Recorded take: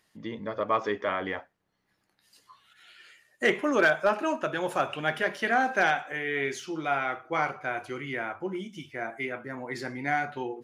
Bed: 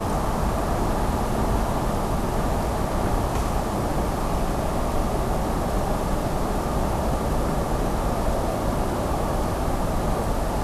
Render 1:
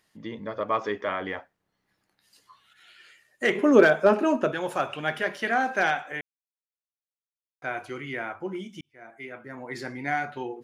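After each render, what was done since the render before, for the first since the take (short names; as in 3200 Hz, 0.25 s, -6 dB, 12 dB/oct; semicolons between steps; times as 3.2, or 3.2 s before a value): 3.55–4.52 small resonant body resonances 230/410 Hz, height 12 dB, ringing for 25 ms; 6.21–7.62 mute; 8.81–9.78 fade in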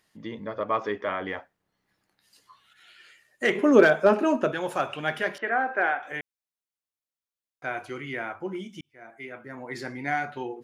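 0.45–1.28 high shelf 6600 Hz -10.5 dB; 5.38–6.03 Chebyshev band-pass 340–1800 Hz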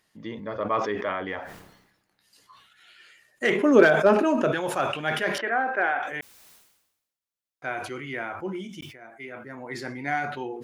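sustainer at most 60 dB/s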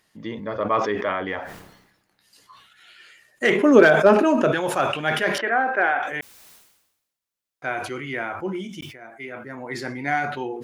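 gain +4 dB; limiter -2 dBFS, peak gain reduction 2 dB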